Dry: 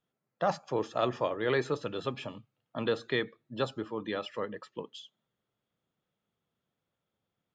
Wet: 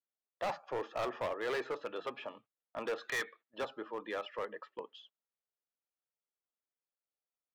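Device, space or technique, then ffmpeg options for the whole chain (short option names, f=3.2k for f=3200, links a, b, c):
walkie-talkie: -filter_complex "[0:a]asettb=1/sr,asplit=3[a][b][c];[a]atrim=end=2.984[d];[b]atrim=start=2.98:end=3.58,asetpts=PTS-STARTPTS,afade=t=in:d=0.004:c=qsin,afade=t=out:st=0.596:d=0.004:c=qsin,tiltshelf=f=650:g=-8.5[e];[c]atrim=start=3.576[f];[d][e]acrossfade=d=0.004:c1=hsin:c2=qsin[g];[g][f]acrossfade=d=0.004:c1=qsin:c2=hsin,highpass=490,lowpass=2.3k,asoftclip=type=hard:threshold=-31.5dB,agate=range=-16dB:threshold=-59dB:ratio=16:detection=peak"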